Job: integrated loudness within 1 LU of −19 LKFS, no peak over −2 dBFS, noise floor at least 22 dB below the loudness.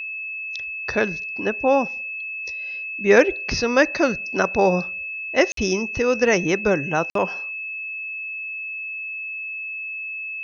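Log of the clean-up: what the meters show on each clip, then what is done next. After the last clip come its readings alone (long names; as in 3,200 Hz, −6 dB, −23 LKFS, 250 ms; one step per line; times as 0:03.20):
number of dropouts 2; longest dropout 53 ms; interfering tone 2,600 Hz; level of the tone −28 dBFS; integrated loudness −22.5 LKFS; sample peak −3.0 dBFS; target loudness −19.0 LKFS
→ repair the gap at 0:05.52/0:07.10, 53 ms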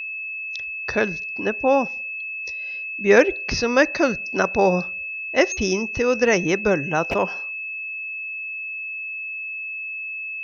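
number of dropouts 0; interfering tone 2,600 Hz; level of the tone −28 dBFS
→ notch filter 2,600 Hz, Q 30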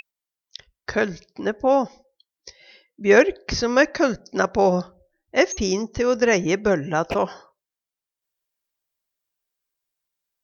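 interfering tone none found; integrated loudness −21.5 LKFS; sample peak −3.0 dBFS; target loudness −19.0 LKFS
→ level +2.5 dB
brickwall limiter −2 dBFS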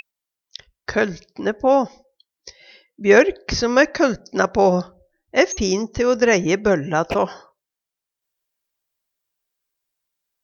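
integrated loudness −19.0 LKFS; sample peak −2.0 dBFS; background noise floor −86 dBFS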